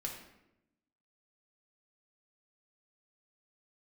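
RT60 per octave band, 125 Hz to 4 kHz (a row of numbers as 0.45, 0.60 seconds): 1.1, 1.2, 0.95, 0.80, 0.75, 0.60 seconds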